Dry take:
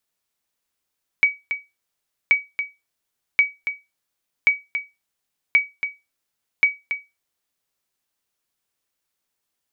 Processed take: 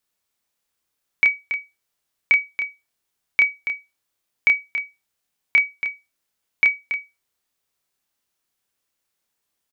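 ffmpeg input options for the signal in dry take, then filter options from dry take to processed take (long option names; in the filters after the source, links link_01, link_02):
-f lavfi -i "aevalsrc='0.447*(sin(2*PI*2270*mod(t,1.08))*exp(-6.91*mod(t,1.08)/0.22)+0.335*sin(2*PI*2270*max(mod(t,1.08)-0.28,0))*exp(-6.91*max(mod(t,1.08)-0.28,0)/0.22))':duration=6.48:sample_rate=44100"
-filter_complex "[0:a]asplit=2[link_01][link_02];[link_02]adelay=29,volume=-3.5dB[link_03];[link_01][link_03]amix=inputs=2:normalize=0"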